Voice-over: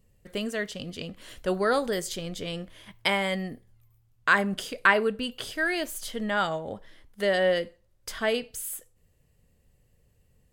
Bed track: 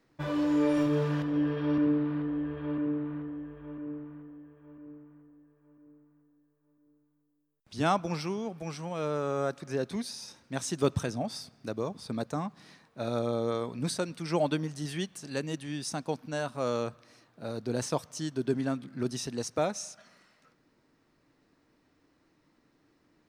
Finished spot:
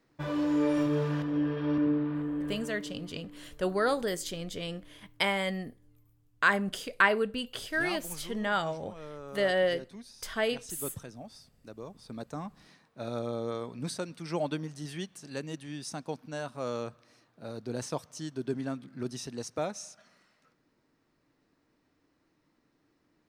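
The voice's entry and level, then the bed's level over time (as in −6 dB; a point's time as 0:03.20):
2.15 s, −3.0 dB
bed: 0:02.53 −1 dB
0:02.78 −12.5 dB
0:11.58 −12.5 dB
0:12.53 −4 dB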